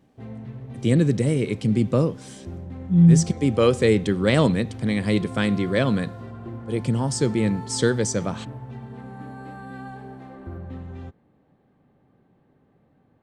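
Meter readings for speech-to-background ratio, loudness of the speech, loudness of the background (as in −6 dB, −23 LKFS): 16.5 dB, −21.5 LKFS, −38.0 LKFS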